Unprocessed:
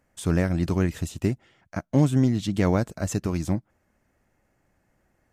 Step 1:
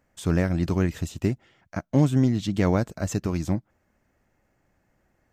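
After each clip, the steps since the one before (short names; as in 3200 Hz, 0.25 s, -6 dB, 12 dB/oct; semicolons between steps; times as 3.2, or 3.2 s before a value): bell 10000 Hz -8 dB 0.4 oct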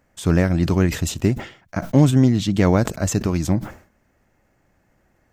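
sustainer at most 130 dB/s; gain +5.5 dB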